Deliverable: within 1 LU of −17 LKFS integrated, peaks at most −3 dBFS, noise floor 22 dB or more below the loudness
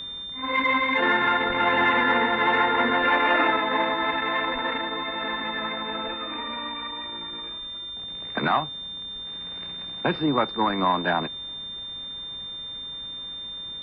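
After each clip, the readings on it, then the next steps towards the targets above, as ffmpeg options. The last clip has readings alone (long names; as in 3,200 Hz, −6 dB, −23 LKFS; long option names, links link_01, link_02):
mains hum 50 Hz; hum harmonics up to 350 Hz; level of the hum −51 dBFS; interfering tone 3,600 Hz; level of the tone −33 dBFS; integrated loudness −25.0 LKFS; sample peak −9.0 dBFS; target loudness −17.0 LKFS
→ -af "bandreject=frequency=50:width_type=h:width=4,bandreject=frequency=100:width_type=h:width=4,bandreject=frequency=150:width_type=h:width=4,bandreject=frequency=200:width_type=h:width=4,bandreject=frequency=250:width_type=h:width=4,bandreject=frequency=300:width_type=h:width=4,bandreject=frequency=350:width_type=h:width=4"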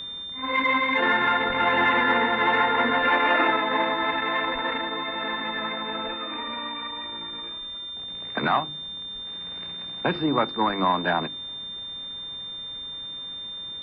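mains hum none found; interfering tone 3,600 Hz; level of the tone −33 dBFS
→ -af "bandreject=frequency=3600:width=30"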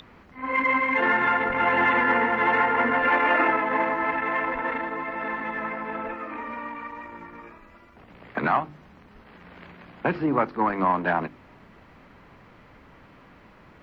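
interfering tone none found; integrated loudness −24.0 LKFS; sample peak −9.0 dBFS; target loudness −17.0 LKFS
→ -af "volume=7dB,alimiter=limit=-3dB:level=0:latency=1"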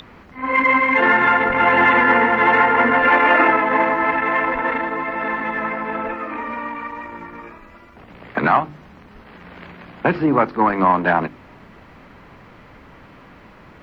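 integrated loudness −17.0 LKFS; sample peak −3.0 dBFS; background noise floor −45 dBFS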